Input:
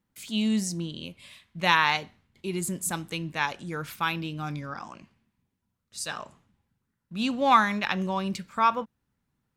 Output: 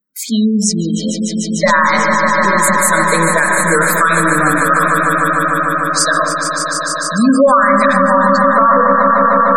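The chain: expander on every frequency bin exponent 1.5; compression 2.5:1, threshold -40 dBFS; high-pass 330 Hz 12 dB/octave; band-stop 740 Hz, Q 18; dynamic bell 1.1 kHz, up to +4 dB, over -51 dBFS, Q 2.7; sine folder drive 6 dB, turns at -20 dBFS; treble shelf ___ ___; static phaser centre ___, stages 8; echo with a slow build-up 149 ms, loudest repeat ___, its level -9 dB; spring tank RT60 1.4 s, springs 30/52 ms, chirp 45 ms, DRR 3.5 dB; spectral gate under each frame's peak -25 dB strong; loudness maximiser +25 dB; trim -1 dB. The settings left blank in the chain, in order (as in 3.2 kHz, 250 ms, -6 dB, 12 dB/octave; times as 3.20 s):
8.6 kHz, -8.5 dB, 560 Hz, 5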